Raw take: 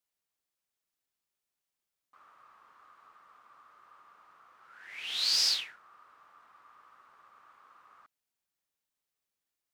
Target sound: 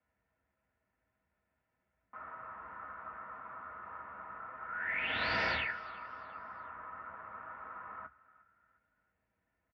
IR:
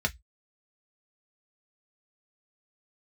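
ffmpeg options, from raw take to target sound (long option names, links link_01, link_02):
-filter_complex "[0:a]lowpass=frequency=1800:width=0.5412,lowpass=frequency=1800:width=1.3066,asplit=4[link_01][link_02][link_03][link_04];[link_02]adelay=354,afreqshift=71,volume=-21dB[link_05];[link_03]adelay=708,afreqshift=142,volume=-29.4dB[link_06];[link_04]adelay=1062,afreqshift=213,volume=-37.8dB[link_07];[link_01][link_05][link_06][link_07]amix=inputs=4:normalize=0[link_08];[1:a]atrim=start_sample=2205[link_09];[link_08][link_09]afir=irnorm=-1:irlink=0,volume=7.5dB"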